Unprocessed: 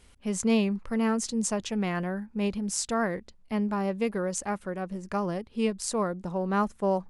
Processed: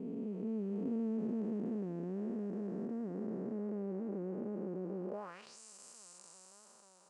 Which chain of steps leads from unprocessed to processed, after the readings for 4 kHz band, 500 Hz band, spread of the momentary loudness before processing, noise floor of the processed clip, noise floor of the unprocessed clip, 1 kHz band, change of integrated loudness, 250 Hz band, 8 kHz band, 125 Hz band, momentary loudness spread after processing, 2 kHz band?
under -20 dB, -12.0 dB, 7 LU, -62 dBFS, -56 dBFS, -22.0 dB, -10.5 dB, -9.5 dB, under -20 dB, -10.5 dB, 17 LU, -25.0 dB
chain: time blur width 1.41 s; vibrato 1.4 Hz 29 cents; band-pass sweep 320 Hz -> 7400 Hz, 5.05–5.58; gain +2 dB

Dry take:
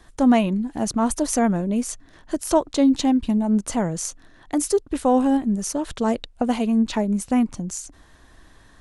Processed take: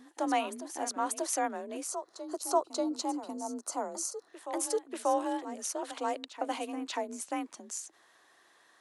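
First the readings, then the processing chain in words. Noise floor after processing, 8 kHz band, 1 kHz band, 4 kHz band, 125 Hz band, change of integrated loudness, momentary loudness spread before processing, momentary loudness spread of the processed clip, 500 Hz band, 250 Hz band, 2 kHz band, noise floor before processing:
-65 dBFS, -6.5 dB, -6.0 dB, -7.5 dB, under -35 dB, -12.5 dB, 11 LU, 8 LU, -10.0 dB, -18.5 dB, -7.0 dB, -52 dBFS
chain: HPF 480 Hz 12 dB/oct; frequency shift +38 Hz; reverse echo 0.587 s -11 dB; spectral gain 1.88–4.28, 1500–3900 Hz -11 dB; gain -7 dB

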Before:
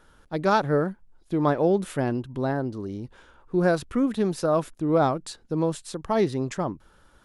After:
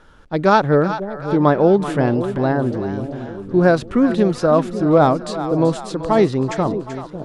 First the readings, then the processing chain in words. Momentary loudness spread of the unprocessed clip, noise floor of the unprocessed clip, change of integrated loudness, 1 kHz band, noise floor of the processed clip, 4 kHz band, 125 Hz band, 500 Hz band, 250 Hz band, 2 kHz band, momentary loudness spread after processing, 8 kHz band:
12 LU, -58 dBFS, +8.0 dB, +8.0 dB, -37 dBFS, +6.5 dB, +8.5 dB, +8.5 dB, +8.5 dB, +8.0 dB, 11 LU, n/a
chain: air absorption 67 m; on a send: split-band echo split 610 Hz, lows 0.551 s, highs 0.383 s, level -10.5 dB; on the sum: gain +8 dB

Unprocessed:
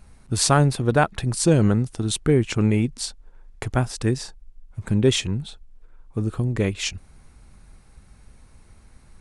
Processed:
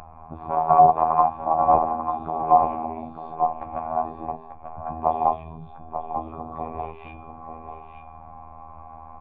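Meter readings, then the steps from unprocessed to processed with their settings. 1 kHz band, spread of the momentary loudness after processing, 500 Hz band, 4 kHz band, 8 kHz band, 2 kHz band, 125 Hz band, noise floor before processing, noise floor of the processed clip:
+12.0 dB, 22 LU, -1.0 dB, under -30 dB, under -40 dB, under -15 dB, -18.0 dB, -51 dBFS, -44 dBFS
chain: non-linear reverb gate 0.25 s rising, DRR -3 dB; added harmonics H 3 -7 dB, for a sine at -0.5 dBFS; de-esser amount 80%; vocal tract filter a; de-hum 127.8 Hz, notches 29; upward compressor, threshold -49 dBFS; robotiser 80.5 Hz; notch 500 Hz, Q 12; on a send: echo 0.891 s -8.5 dB; on the sum: maximiser +24.5 dB; gain -2 dB

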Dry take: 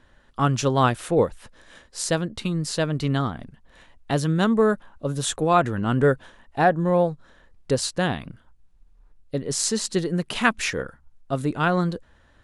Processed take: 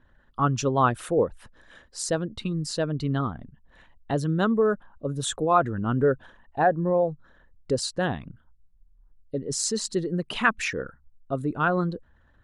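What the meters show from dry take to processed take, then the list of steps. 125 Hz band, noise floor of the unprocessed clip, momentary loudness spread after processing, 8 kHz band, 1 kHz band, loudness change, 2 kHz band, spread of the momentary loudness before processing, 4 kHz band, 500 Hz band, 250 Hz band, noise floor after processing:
-3.5 dB, -57 dBFS, 12 LU, -3.5 dB, -1.5 dB, -2.5 dB, -2.5 dB, 11 LU, -4.0 dB, -2.0 dB, -3.5 dB, -60 dBFS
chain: formant sharpening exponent 1.5; bell 1200 Hz +2.5 dB; gain -3 dB

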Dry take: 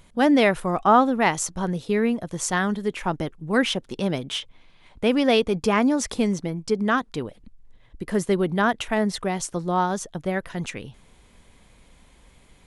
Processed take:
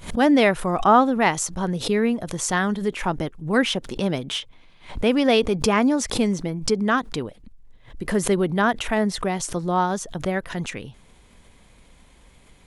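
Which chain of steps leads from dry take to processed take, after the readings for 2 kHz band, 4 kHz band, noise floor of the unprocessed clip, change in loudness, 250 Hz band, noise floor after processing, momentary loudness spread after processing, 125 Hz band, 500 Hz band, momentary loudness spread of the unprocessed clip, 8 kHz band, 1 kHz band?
+1.0 dB, +2.0 dB, -55 dBFS, +1.0 dB, +1.0 dB, -53 dBFS, 12 LU, +1.5 dB, +1.0 dB, 13 LU, +2.0 dB, +1.0 dB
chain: backwards sustainer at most 130 dB/s; gain +1 dB

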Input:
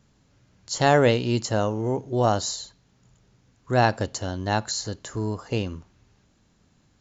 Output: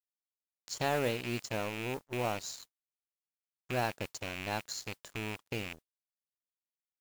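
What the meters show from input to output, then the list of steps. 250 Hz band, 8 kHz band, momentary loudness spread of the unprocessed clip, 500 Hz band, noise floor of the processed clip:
-13.5 dB, n/a, 13 LU, -13.0 dB, under -85 dBFS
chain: rattling part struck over -29 dBFS, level -17 dBFS; compressor 1.5:1, threshold -48 dBFS, peak gain reduction 12.5 dB; low shelf 130 Hz -3.5 dB; crossover distortion -43.5 dBFS; modulation noise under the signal 19 dB

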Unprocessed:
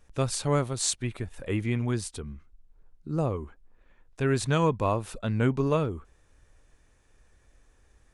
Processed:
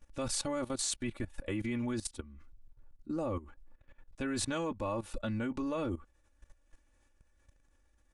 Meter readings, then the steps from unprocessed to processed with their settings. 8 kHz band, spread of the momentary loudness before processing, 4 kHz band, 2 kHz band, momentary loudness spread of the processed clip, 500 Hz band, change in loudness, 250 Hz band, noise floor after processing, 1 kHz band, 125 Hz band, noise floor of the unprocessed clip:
-5.0 dB, 13 LU, -4.5 dB, -7.0 dB, 8 LU, -9.0 dB, -8.0 dB, -5.5 dB, -70 dBFS, -9.5 dB, -14.0 dB, -63 dBFS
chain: comb 3.5 ms, depth 85%; level quantiser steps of 17 dB

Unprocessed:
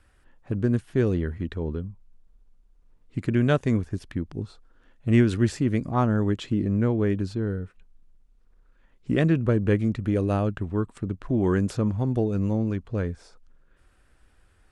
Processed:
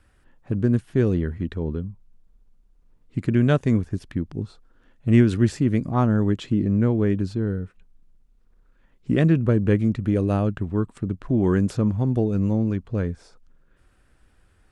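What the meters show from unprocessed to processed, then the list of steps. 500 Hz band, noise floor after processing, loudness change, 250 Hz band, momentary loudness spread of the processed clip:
+1.5 dB, -60 dBFS, +3.0 dB, +3.0 dB, 12 LU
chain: bell 170 Hz +4 dB 2 oct

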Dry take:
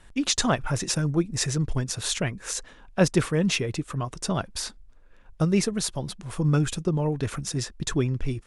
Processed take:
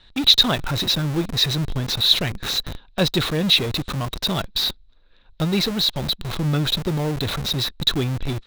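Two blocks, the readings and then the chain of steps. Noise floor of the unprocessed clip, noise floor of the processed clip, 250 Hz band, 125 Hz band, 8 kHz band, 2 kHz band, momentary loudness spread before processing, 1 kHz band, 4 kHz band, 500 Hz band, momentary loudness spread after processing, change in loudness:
-51 dBFS, -52 dBFS, +1.5 dB, +2.0 dB, -4.0 dB, +4.0 dB, 9 LU, +3.0 dB, +14.5 dB, +0.5 dB, 9 LU, +6.0 dB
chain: synth low-pass 3900 Hz, resonance Q 14; in parallel at -4 dB: Schmitt trigger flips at -34 dBFS; on the sum: gain -2.5 dB

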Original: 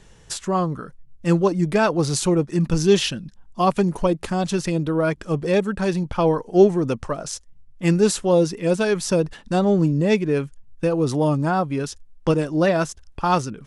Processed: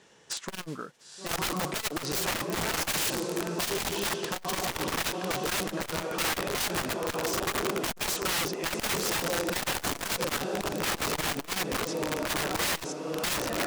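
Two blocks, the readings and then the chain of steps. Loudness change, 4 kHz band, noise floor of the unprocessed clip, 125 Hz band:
-8.5 dB, +1.0 dB, -49 dBFS, -16.5 dB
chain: modulation noise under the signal 19 dB; BPF 270–7300 Hz; diffused feedback echo 0.952 s, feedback 43%, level -6.5 dB; wrapped overs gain 20 dB; core saturation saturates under 170 Hz; gain -2.5 dB

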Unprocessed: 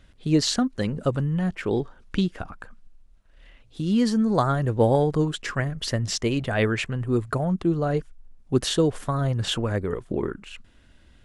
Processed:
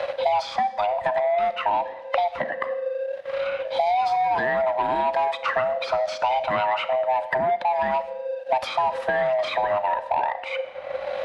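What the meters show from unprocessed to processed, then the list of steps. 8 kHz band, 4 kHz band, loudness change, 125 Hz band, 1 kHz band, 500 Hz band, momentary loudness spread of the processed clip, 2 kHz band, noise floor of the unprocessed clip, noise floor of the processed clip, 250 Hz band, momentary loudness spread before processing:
under -15 dB, -4.0 dB, +0.5 dB, -22.0 dB, +11.5 dB, +3.5 dB, 6 LU, +5.0 dB, -55 dBFS, -37 dBFS, -18.5 dB, 8 LU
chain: band-swap scrambler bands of 500 Hz; high shelf 6200 Hz +9 dB; limiter -16 dBFS, peak gain reduction 8.5 dB; sample leveller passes 1; HPF 620 Hz 6 dB/oct; air absorption 350 m; Schroeder reverb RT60 0.64 s, combs from 28 ms, DRR 13 dB; three-band squash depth 100%; gain +4 dB

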